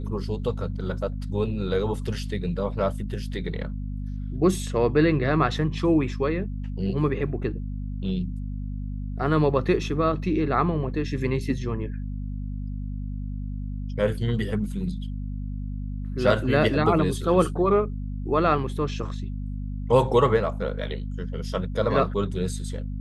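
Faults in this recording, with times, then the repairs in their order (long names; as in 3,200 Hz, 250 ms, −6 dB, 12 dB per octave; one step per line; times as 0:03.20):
mains hum 50 Hz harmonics 5 −31 dBFS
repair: hum removal 50 Hz, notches 5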